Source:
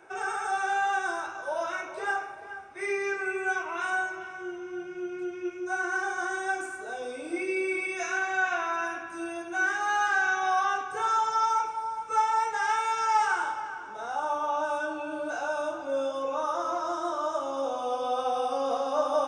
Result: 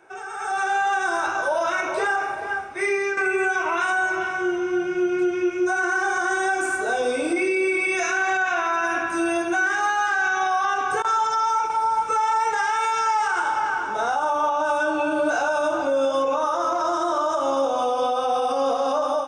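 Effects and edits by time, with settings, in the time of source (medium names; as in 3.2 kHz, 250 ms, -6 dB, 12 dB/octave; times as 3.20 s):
2.54–3.17 s: fade out, to -11.5 dB
11.02–11.70 s: gate with hold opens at -18 dBFS, closes at -21 dBFS
whole clip: compression 3:1, threshold -31 dBFS; peak limiter -28.5 dBFS; level rider gain up to 14 dB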